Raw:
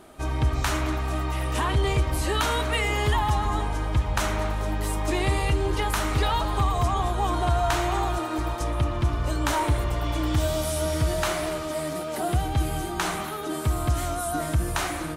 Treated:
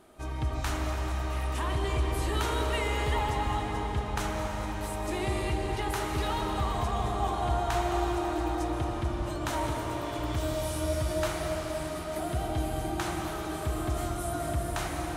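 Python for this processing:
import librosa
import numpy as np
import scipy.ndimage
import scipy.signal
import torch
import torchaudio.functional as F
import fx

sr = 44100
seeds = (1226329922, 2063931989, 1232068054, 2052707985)

y = fx.highpass(x, sr, hz=140.0, slope=12, at=(9.22, 10.19))
y = fx.echo_wet_bandpass(y, sr, ms=83, feedback_pct=78, hz=410.0, wet_db=-4.5)
y = fx.rev_freeverb(y, sr, rt60_s=4.9, hf_ratio=0.9, predelay_ms=100, drr_db=2.5)
y = F.gain(torch.from_numpy(y), -8.0).numpy()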